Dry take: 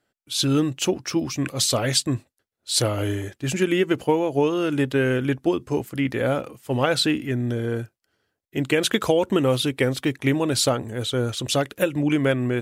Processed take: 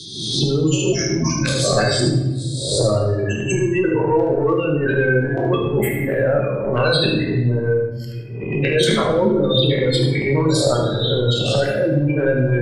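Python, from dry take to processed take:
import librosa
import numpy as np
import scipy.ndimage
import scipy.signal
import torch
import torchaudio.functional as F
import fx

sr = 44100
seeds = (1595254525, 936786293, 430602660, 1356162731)

y = fx.spec_swells(x, sr, rise_s=0.59)
y = fx.dereverb_blind(y, sr, rt60_s=0.51)
y = fx.spec_gate(y, sr, threshold_db=-15, keep='strong')
y = y + 0.48 * np.pad(y, (int(1.9 * sr / 1000.0), 0))[:len(y)]
y = fx.transient(y, sr, attack_db=-12, sustain_db=9)
y = y + 10.0 ** (-8.5 / 20.0) * np.pad(y, (int(75 * sr / 1000.0), 0))[:len(y)]
y = fx.room_shoebox(y, sr, seeds[0], volume_m3=270.0, walls='mixed', distance_m=1.1)
y = fx.band_squash(y, sr, depth_pct=70)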